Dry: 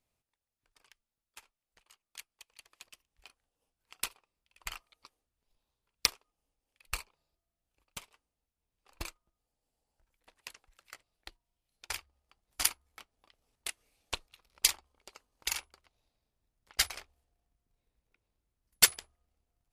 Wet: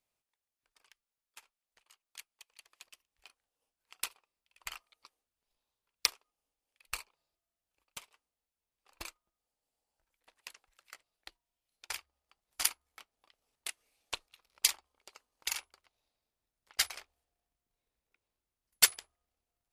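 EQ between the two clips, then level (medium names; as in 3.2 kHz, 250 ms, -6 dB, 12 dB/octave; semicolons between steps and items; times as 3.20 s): bass shelf 270 Hz -11 dB; -1.5 dB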